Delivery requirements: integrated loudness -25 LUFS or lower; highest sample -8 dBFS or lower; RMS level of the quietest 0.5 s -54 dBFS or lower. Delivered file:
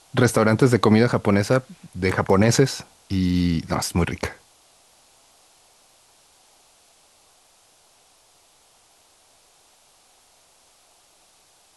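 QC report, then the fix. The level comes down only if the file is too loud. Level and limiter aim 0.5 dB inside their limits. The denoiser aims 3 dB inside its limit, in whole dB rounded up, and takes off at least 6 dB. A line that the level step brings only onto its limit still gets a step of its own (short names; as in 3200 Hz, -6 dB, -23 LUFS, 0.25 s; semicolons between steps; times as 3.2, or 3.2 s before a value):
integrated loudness -20.5 LUFS: fail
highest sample -5.0 dBFS: fail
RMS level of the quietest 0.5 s -57 dBFS: OK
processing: gain -5 dB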